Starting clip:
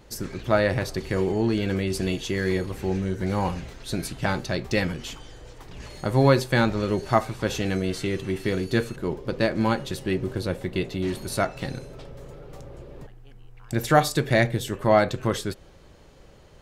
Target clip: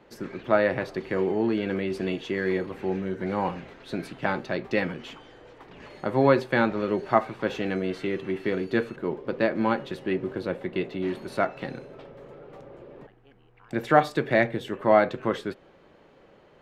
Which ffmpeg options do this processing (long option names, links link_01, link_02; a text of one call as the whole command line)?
ffmpeg -i in.wav -filter_complex "[0:a]acrossover=split=170 3200:gain=0.126 1 0.112[link_01][link_02][link_03];[link_01][link_02][link_03]amix=inputs=3:normalize=0" out.wav